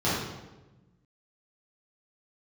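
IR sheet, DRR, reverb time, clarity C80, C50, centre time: -10.5 dB, 1.1 s, 2.5 dB, -0.5 dB, 74 ms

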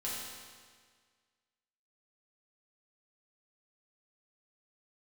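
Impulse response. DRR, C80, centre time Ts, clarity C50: -7.5 dB, 1.0 dB, 108 ms, -1.0 dB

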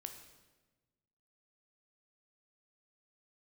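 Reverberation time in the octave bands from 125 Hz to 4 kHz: 1.8 s, 1.6 s, 1.3 s, 1.1 s, 1.1 s, 1.0 s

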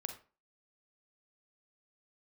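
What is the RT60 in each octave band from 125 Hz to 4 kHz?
0.30 s, 0.35 s, 0.35 s, 0.35 s, 0.30 s, 0.25 s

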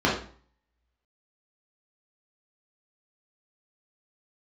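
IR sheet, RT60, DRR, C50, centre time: 0.45 s, -6.0 dB, 4.5 dB, 36 ms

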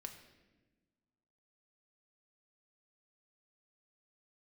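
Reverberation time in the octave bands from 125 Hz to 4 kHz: 1.8 s, 1.8 s, 1.5 s, 1.0 s, 1.1 s, 0.90 s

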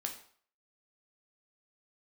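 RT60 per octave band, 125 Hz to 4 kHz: 0.45 s, 0.45 s, 0.50 s, 0.55 s, 0.50 s, 0.45 s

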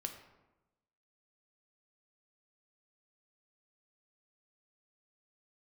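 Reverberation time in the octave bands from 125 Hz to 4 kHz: 1.1 s, 1.2 s, 1.1 s, 1.0 s, 0.80 s, 0.60 s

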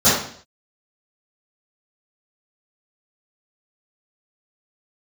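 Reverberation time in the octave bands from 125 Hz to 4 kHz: 0.65 s, 0.55 s, 0.55 s, 0.55 s, 0.55 s, 0.55 s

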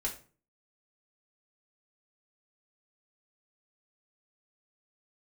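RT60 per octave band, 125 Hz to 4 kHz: 0.60 s, 0.50 s, 0.45 s, 0.35 s, 0.35 s, 0.30 s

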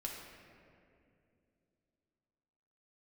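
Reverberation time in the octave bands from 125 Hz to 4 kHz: 3.4 s, 3.5 s, 3.0 s, 2.1 s, 2.1 s, 1.4 s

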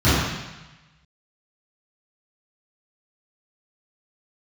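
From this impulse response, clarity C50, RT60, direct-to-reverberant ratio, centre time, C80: -2.5 dB, 1.1 s, -16.5 dB, 97 ms, 0.5 dB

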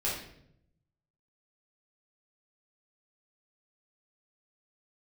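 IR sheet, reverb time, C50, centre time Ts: 0.70 s, 3.0 dB, 47 ms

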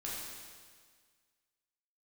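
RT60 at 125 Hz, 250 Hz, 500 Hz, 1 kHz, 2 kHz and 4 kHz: 1.7 s, 1.7 s, 1.7 s, 1.7 s, 1.7 s, 1.7 s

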